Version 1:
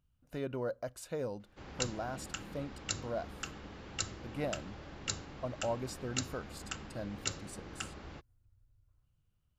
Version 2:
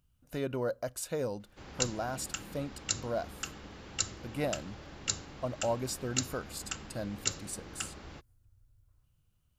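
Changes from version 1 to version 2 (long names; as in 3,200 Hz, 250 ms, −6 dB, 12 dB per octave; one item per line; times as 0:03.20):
speech +3.5 dB
master: add high-shelf EQ 5,200 Hz +9 dB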